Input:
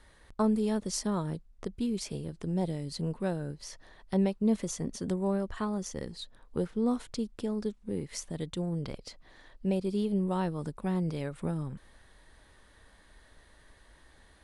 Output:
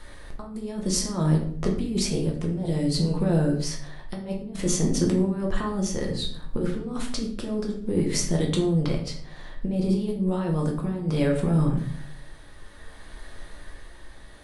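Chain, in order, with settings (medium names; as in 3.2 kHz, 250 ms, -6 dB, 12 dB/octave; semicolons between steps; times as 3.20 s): compressor with a negative ratio -33 dBFS, ratio -0.5; simulated room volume 88 m³, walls mixed, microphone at 0.82 m; tremolo 0.6 Hz, depth 37%; trim +7 dB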